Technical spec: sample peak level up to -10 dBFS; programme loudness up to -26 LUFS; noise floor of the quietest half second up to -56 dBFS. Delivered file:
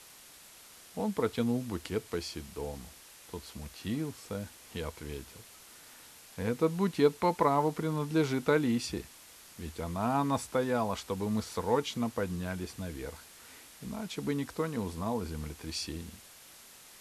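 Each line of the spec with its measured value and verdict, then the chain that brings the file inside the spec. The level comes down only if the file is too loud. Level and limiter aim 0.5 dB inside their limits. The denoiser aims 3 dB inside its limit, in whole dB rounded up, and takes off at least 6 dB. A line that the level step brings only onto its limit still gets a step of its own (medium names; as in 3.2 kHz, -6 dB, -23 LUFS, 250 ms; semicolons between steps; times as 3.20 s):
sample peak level -12.5 dBFS: pass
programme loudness -33.0 LUFS: pass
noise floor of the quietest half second -54 dBFS: fail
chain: noise reduction 6 dB, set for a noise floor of -54 dBFS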